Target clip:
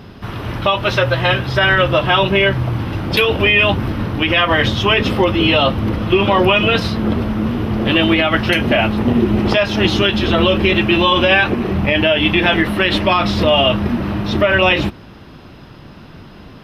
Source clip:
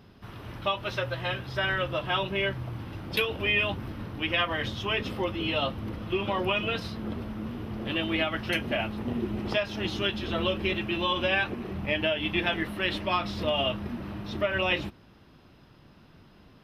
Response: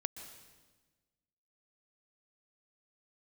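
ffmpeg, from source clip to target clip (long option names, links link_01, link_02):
-af "highshelf=frequency=6300:gain=-4.5,alimiter=level_in=19.5dB:limit=-1dB:release=50:level=0:latency=1,volume=-2.5dB"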